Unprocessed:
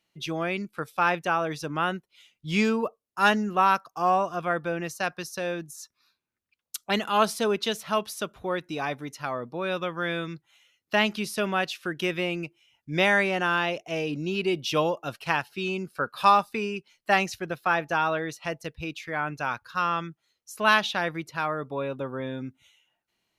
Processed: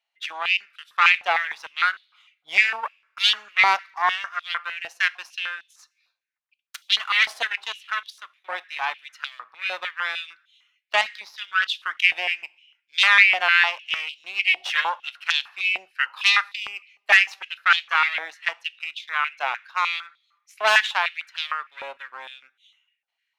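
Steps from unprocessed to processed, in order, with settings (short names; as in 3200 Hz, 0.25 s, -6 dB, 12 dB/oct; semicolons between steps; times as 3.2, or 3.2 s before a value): 11.01–11.62 fixed phaser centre 2700 Hz, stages 6; added harmonics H 6 -9 dB, 8 -26 dB, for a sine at -6 dBFS; bell 2600 Hz +13.5 dB 2.6 oct; in parallel at -3 dB: backlash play -24.5 dBFS; 5.3–5.79 on the sum: high shelf 6300 Hz -6 dB; 7.47–8.49 level quantiser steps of 13 dB; on a send at -16 dB: reverb, pre-delay 3 ms; on the sum: stepped high-pass 6.6 Hz 730–3500 Hz; gain -17 dB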